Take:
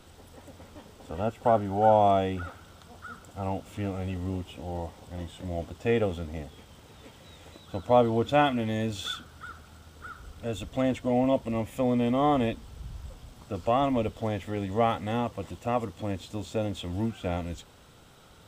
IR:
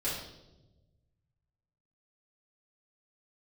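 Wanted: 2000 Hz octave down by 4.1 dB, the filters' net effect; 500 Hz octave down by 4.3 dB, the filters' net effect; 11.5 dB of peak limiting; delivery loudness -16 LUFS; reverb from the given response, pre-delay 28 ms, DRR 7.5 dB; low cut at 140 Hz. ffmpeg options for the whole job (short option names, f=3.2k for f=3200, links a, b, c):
-filter_complex "[0:a]highpass=140,equalizer=f=500:t=o:g=-5,equalizer=f=2k:t=o:g=-5.5,alimiter=limit=-23.5dB:level=0:latency=1,asplit=2[a][b];[1:a]atrim=start_sample=2205,adelay=28[c];[b][c]afir=irnorm=-1:irlink=0,volume=-13dB[d];[a][d]amix=inputs=2:normalize=0,volume=19dB"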